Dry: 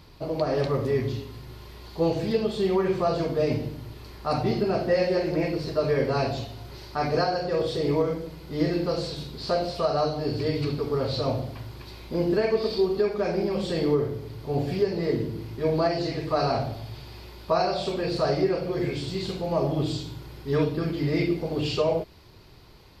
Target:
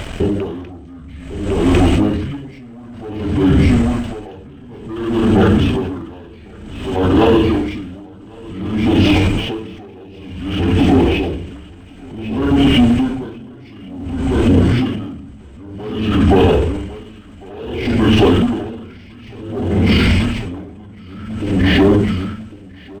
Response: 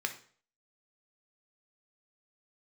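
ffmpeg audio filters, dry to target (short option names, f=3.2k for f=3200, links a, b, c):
-filter_complex "[0:a]bandreject=f=4.3k:w=14,asetrate=27781,aresample=44100,atempo=1.5874,asoftclip=type=tanh:threshold=-21.5dB,acompressor=threshold=-30dB:ratio=6,aeval=exprs='sgn(val(0))*max(abs(val(0))-0.00133,0)':c=same,asplit=2[a][b];[b]aecho=0:1:1101|2202|3303|4404|5505:0.562|0.242|0.104|0.0447|0.0192[c];[a][c]amix=inputs=2:normalize=0,alimiter=level_in=32.5dB:limit=-1dB:release=50:level=0:latency=1,aeval=exprs='val(0)*pow(10,-27*(0.5-0.5*cos(2*PI*0.55*n/s))/20)':c=same,volume=-3dB"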